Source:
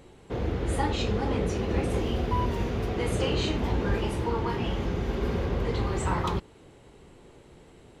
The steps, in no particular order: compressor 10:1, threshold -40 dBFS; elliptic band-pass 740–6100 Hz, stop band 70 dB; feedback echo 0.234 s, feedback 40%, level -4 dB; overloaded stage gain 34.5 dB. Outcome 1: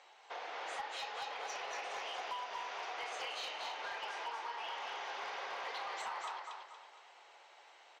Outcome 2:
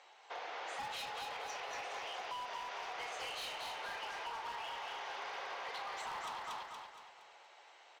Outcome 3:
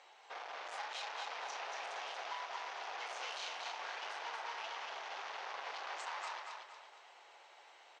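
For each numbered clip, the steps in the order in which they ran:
elliptic band-pass > compressor > feedback echo > overloaded stage; elliptic band-pass > overloaded stage > feedback echo > compressor; overloaded stage > elliptic band-pass > compressor > feedback echo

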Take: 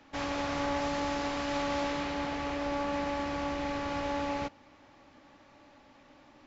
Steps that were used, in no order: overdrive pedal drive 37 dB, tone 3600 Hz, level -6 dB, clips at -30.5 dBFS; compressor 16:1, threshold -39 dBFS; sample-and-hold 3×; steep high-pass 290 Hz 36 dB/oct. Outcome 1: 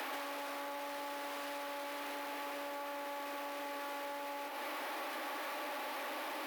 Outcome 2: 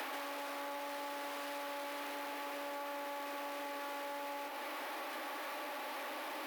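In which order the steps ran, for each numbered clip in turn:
overdrive pedal > compressor > steep high-pass > sample-and-hold; overdrive pedal > sample-and-hold > steep high-pass > compressor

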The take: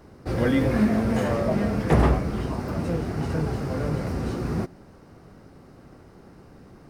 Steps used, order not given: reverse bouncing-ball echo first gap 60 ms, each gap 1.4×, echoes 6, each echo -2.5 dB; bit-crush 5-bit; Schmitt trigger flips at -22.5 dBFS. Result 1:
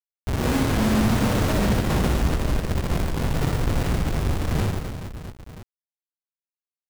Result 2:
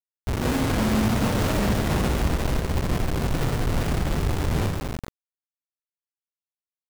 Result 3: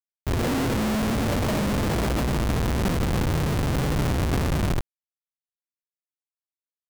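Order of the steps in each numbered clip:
Schmitt trigger > bit-crush > reverse bouncing-ball echo; Schmitt trigger > reverse bouncing-ball echo > bit-crush; reverse bouncing-ball echo > Schmitt trigger > bit-crush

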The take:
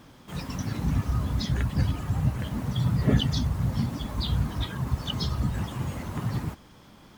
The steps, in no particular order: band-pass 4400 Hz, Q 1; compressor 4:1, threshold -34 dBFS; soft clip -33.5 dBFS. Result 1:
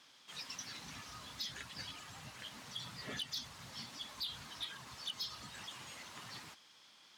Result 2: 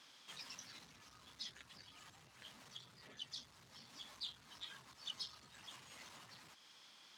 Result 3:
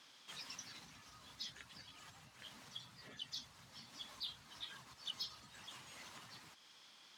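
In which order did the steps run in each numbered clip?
band-pass > compressor > soft clip; compressor > soft clip > band-pass; compressor > band-pass > soft clip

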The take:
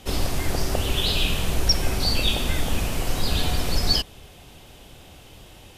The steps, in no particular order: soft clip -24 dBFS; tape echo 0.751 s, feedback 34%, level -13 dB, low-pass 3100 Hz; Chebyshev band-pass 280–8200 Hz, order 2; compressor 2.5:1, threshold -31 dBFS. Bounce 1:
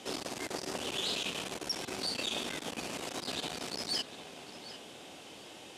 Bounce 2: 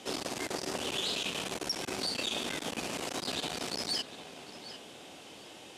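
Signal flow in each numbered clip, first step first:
soft clip > tape echo > compressor > Chebyshev band-pass; tape echo > soft clip > Chebyshev band-pass > compressor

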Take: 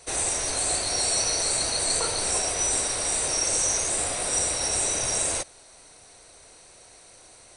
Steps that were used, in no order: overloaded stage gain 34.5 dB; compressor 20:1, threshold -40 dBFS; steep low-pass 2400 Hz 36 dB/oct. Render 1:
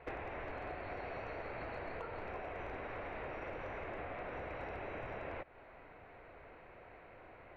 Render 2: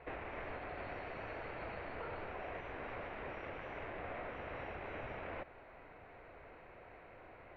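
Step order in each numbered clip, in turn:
steep low-pass > compressor > overloaded stage; overloaded stage > steep low-pass > compressor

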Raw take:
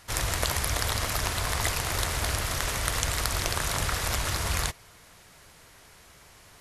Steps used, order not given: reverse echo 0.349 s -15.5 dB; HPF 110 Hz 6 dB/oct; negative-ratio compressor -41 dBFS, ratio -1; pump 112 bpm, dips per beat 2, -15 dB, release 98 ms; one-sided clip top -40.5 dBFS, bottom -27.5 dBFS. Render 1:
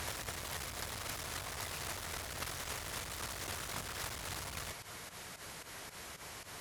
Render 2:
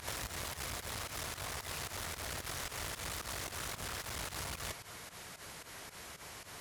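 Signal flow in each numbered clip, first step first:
pump > reverse echo > one-sided clip > negative-ratio compressor > HPF; reverse echo > one-sided clip > HPF > negative-ratio compressor > pump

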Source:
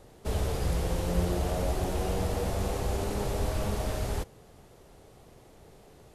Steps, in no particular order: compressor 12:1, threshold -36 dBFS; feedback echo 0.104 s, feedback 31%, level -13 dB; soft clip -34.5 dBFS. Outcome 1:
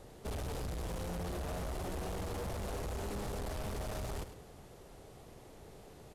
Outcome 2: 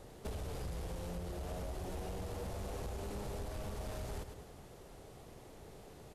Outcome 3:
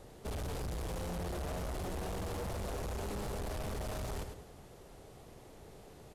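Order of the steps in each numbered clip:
soft clip > feedback echo > compressor; feedback echo > compressor > soft clip; feedback echo > soft clip > compressor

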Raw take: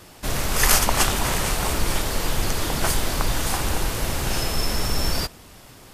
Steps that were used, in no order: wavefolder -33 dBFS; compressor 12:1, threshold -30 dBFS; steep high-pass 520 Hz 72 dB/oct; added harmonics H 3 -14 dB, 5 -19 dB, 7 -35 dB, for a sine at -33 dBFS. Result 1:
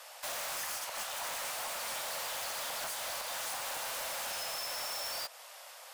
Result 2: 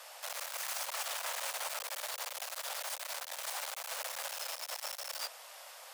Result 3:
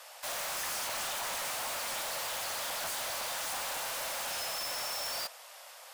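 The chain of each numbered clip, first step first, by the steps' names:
steep high-pass > compressor > added harmonics > wavefolder; added harmonics > compressor > wavefolder > steep high-pass; steep high-pass > added harmonics > compressor > wavefolder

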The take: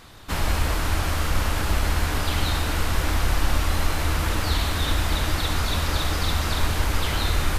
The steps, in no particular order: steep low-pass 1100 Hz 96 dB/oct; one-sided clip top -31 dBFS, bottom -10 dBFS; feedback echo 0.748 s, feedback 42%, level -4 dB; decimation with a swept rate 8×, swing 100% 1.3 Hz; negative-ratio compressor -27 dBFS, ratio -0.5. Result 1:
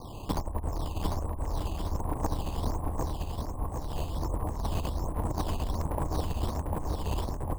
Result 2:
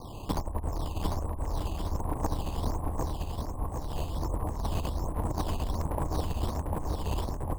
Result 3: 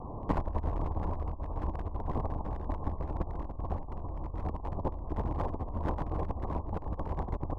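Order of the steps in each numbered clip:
negative-ratio compressor > steep low-pass > one-sided clip > decimation with a swept rate > feedback echo; negative-ratio compressor > steep low-pass > decimation with a swept rate > one-sided clip > feedback echo; decimation with a swept rate > feedback echo > negative-ratio compressor > steep low-pass > one-sided clip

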